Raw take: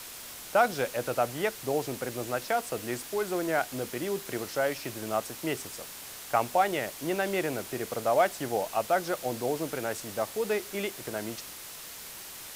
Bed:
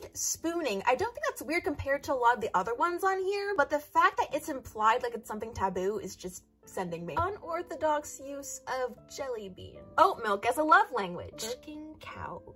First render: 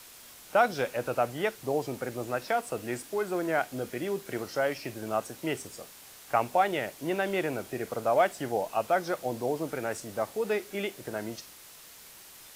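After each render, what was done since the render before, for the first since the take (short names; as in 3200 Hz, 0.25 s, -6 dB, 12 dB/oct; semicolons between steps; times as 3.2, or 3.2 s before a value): noise print and reduce 7 dB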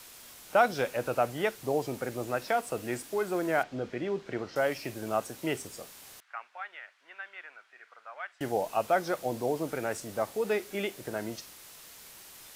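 3.63–4.56 air absorption 150 m; 6.2–8.41 ladder band-pass 1800 Hz, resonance 40%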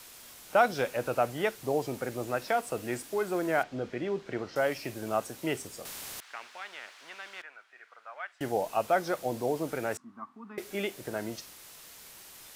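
5.85–7.42 spectral compressor 2:1; 9.97–10.58 double band-pass 520 Hz, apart 2.2 oct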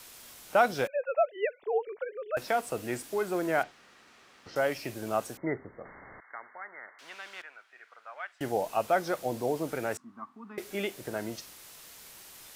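0.87–2.37 sine-wave speech; 3.71–4.46 room tone; 5.37–6.99 brick-wall FIR low-pass 2200 Hz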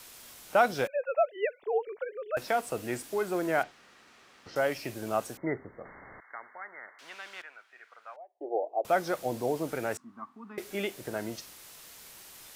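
8.16–8.85 elliptic band-pass 330–780 Hz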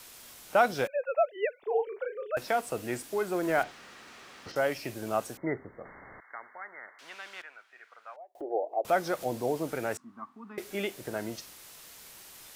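1.59–2.29 doubler 35 ms -7 dB; 3.43–4.52 G.711 law mismatch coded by mu; 8.35–9.25 upward compressor, threshold -32 dBFS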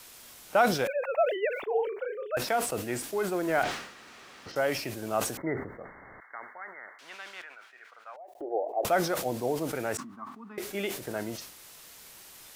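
sustainer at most 79 dB/s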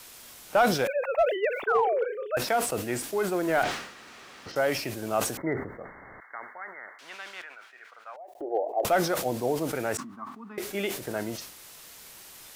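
1.67–2.04 painted sound fall 420–1600 Hz -28 dBFS; in parallel at -10.5 dB: wavefolder -20 dBFS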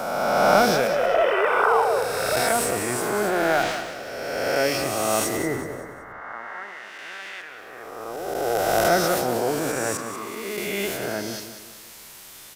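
spectral swells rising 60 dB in 2.22 s; on a send: feedback echo 0.188 s, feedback 40%, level -10 dB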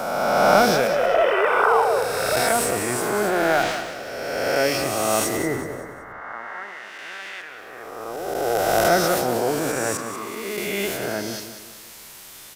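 gain +1.5 dB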